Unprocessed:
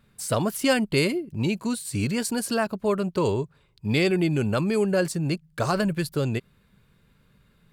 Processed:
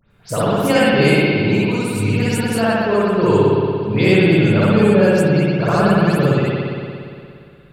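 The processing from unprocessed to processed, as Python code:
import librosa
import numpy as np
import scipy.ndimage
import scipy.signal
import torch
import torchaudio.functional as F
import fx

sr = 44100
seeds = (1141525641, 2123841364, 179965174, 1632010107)

y = fx.spec_delay(x, sr, highs='late', ms=105)
y = fx.rev_spring(y, sr, rt60_s=2.4, pass_ms=(58,), chirp_ms=65, drr_db=-9.0)
y = y * 10.0 ** (1.0 / 20.0)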